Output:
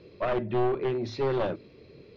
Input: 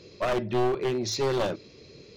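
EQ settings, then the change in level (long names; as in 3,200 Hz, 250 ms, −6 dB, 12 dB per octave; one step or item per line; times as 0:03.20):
high-frequency loss of the air 330 metres
mains-hum notches 50/100/150/200/250 Hz
0.0 dB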